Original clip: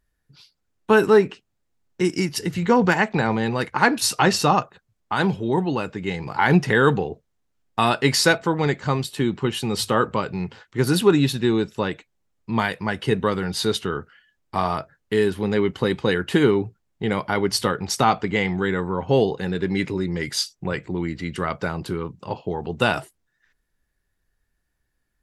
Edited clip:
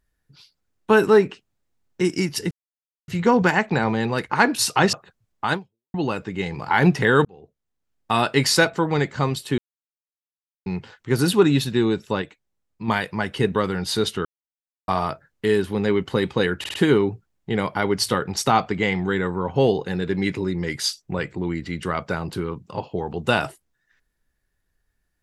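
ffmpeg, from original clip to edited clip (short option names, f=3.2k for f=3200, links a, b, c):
-filter_complex "[0:a]asplit=14[a][b][c][d][e][f][g][h][i][j][k][l][m][n];[a]atrim=end=2.51,asetpts=PTS-STARTPTS,afade=t=out:st=2.506:d=0.004:c=hsin,apad=pad_dur=0.57[o];[b]atrim=start=2.51:end=4.362,asetpts=PTS-STARTPTS,afade=t=in:d=0.004:c=hsin[p];[c]atrim=start=4.608:end=5.62,asetpts=PTS-STARTPTS,afade=t=out:st=0.602:d=0.41:c=exp[q];[d]atrim=start=5.62:end=6.93,asetpts=PTS-STARTPTS,afade=t=in:d=0.004:c=hsin,afade=t=out:st=1.306:d=0.004:c=hsin[r];[e]atrim=start=6.93:end=9.26,asetpts=PTS-STARTPTS,afade=t=in:d=1.03,afade=t=out:st=2.326:d=0.004:c=hsin[s];[f]atrim=start=9.26:end=10.34,asetpts=PTS-STARTPTS,volume=0[t];[g]atrim=start=10.34:end=11.902,asetpts=PTS-STARTPTS,afade=t=in:d=0.004:c=hsin[u];[h]atrim=start=11.898:end=12.562,asetpts=PTS-STARTPTS,volume=-4.5dB[v];[i]atrim=start=12.558:end=13.93,asetpts=PTS-STARTPTS,afade=t=out:st=1.368:d=0.004:c=hsin[w];[j]atrim=start=13.93:end=14.56,asetpts=PTS-STARTPTS,volume=0[x];[k]atrim=start=14.56:end=16.322,asetpts=PTS-STARTPTS,afade=t=in:d=0.004:c=hsin[y];[l]atrim=start=16.268:end=16.322[z];[m]atrim=start=16.268:end=16.322[aa];[n]atrim=start=16.268[ab];[o][p]concat=n=2:v=0:a=1[ac];[q][r][s][t][u]concat=n=5:v=0:a=1[ad];[ac][ad]acrossfade=d=0.004:c1=hsin:c2=hsin[ae];[ae][v]acrossfade=d=0.004:c1=hsin:c2=hsin[af];[w][x][y]concat=n=3:v=0:a=1[ag];[af][ag]acrossfade=d=0.004:c1=hsin:c2=hsin[ah];[ah][z]acrossfade=d=0.004:c1=hsin:c2=hsin[ai];[ai][aa]acrossfade=d=0.004:c1=hsin:c2=hsin[aj];[aj][ab]acrossfade=d=0.004:c1=hsin:c2=hsin"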